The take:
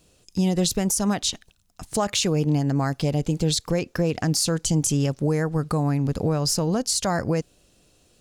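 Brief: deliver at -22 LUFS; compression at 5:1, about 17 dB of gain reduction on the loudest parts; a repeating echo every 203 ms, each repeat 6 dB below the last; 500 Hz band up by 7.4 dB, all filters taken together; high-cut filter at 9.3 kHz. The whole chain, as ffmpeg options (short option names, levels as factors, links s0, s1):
-af "lowpass=9300,equalizer=f=500:t=o:g=8.5,acompressor=threshold=0.02:ratio=5,aecho=1:1:203|406|609|812|1015|1218:0.501|0.251|0.125|0.0626|0.0313|0.0157,volume=4.47"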